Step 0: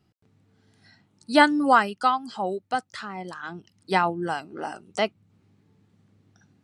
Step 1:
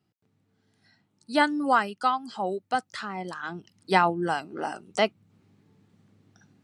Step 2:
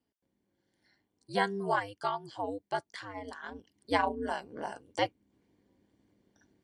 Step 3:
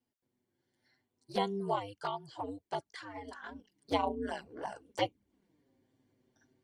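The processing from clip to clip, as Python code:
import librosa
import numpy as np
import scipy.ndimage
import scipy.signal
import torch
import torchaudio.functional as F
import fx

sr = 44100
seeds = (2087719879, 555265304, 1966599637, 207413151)

y1 = scipy.signal.sosfilt(scipy.signal.butter(2, 100.0, 'highpass', fs=sr, output='sos'), x)
y1 = fx.rider(y1, sr, range_db=4, speed_s=2.0)
y1 = y1 * 10.0 ** (-2.5 / 20.0)
y2 = y1 * np.sin(2.0 * np.pi * 100.0 * np.arange(len(y1)) / sr)
y2 = fx.notch_comb(y2, sr, f0_hz=1300.0)
y2 = y2 * 10.0 ** (-3.5 / 20.0)
y3 = fx.env_flanger(y2, sr, rest_ms=8.2, full_db=-28.0)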